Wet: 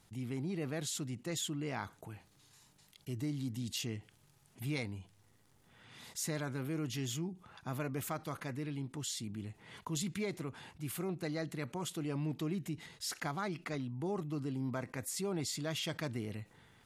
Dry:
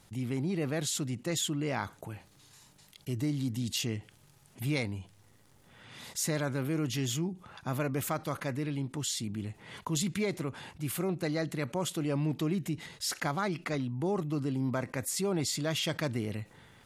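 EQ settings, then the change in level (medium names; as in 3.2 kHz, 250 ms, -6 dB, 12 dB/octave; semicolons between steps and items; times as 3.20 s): band-stop 560 Hz, Q 12; -6.0 dB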